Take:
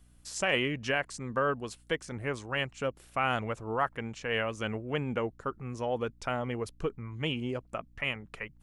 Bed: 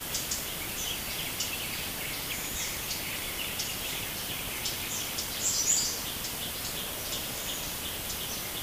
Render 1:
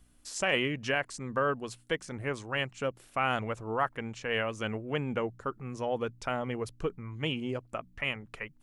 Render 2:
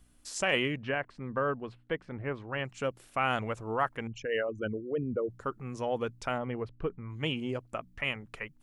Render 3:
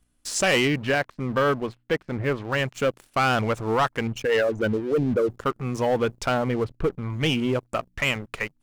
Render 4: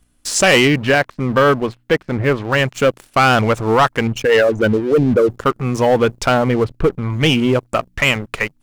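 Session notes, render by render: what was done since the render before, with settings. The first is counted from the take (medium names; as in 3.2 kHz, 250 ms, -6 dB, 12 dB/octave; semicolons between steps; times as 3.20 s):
de-hum 60 Hz, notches 3
0.76–2.65 s: distance through air 410 m; 4.07–5.30 s: resonances exaggerated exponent 3; 6.38–7.10 s: distance through air 370 m
waveshaping leveller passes 3
trim +9 dB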